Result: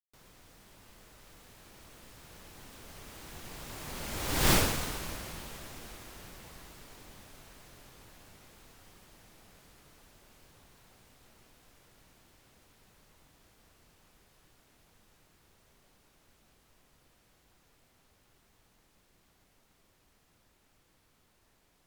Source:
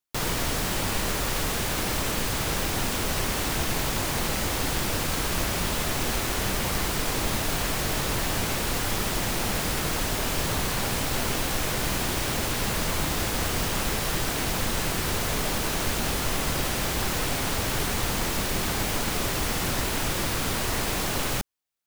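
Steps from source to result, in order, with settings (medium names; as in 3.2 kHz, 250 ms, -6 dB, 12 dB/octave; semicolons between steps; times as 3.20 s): Doppler pass-by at 4.52 s, 23 m/s, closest 1.6 m; trim +5 dB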